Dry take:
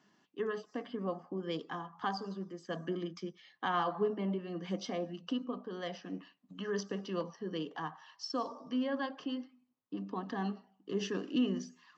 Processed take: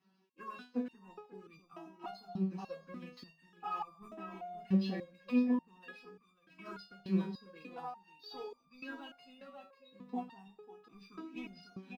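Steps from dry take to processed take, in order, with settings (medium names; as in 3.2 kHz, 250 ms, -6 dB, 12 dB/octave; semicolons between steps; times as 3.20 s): coarse spectral quantiser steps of 15 dB; waveshaping leveller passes 1; comb of notches 300 Hz; formant shift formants -3 st; delay 543 ms -10 dB; resonator arpeggio 3.4 Hz 190–1200 Hz; trim +9.5 dB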